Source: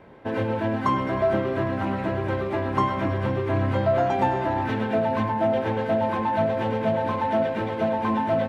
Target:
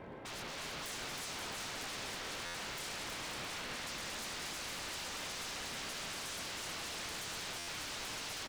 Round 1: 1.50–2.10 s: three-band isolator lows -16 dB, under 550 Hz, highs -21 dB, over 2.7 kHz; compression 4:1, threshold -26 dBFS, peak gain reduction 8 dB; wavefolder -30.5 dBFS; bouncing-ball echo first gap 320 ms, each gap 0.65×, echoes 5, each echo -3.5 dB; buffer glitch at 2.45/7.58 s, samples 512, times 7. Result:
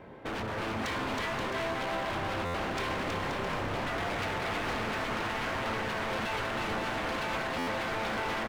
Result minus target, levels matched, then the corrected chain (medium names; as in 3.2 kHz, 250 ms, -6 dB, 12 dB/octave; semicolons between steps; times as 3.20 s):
wavefolder: distortion -34 dB
1.50–2.10 s: three-band isolator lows -16 dB, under 550 Hz, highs -21 dB, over 2.7 kHz; compression 4:1, threshold -26 dBFS, peak gain reduction 8 dB; wavefolder -40.5 dBFS; bouncing-ball echo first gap 320 ms, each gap 0.65×, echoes 5, each echo -3.5 dB; buffer glitch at 2.45/7.58 s, samples 512, times 7